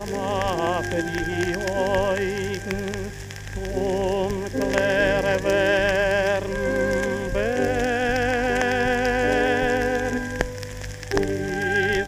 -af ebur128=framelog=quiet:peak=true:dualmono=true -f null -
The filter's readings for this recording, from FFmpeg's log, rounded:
Integrated loudness:
  I:         -20.0 LUFS
  Threshold: -30.2 LUFS
Loudness range:
  LRA:         3.9 LU
  Threshold: -39.9 LUFS
  LRA low:   -22.5 LUFS
  LRA high:  -18.6 LUFS
True peak:
  Peak:       -2.7 dBFS